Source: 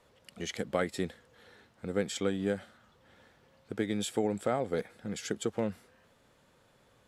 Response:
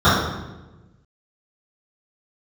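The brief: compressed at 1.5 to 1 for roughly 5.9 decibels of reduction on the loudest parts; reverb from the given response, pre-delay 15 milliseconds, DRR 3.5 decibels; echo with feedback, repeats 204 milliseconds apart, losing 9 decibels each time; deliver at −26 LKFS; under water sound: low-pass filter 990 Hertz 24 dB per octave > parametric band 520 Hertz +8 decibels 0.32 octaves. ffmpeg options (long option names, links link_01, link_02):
-filter_complex "[0:a]acompressor=threshold=-41dB:ratio=1.5,aecho=1:1:204|408|612|816:0.355|0.124|0.0435|0.0152,asplit=2[link_01][link_02];[1:a]atrim=start_sample=2205,adelay=15[link_03];[link_02][link_03]afir=irnorm=-1:irlink=0,volume=-30dB[link_04];[link_01][link_04]amix=inputs=2:normalize=0,lowpass=frequency=990:width=0.5412,lowpass=frequency=990:width=1.3066,equalizer=frequency=520:width_type=o:width=0.32:gain=8,volume=8.5dB"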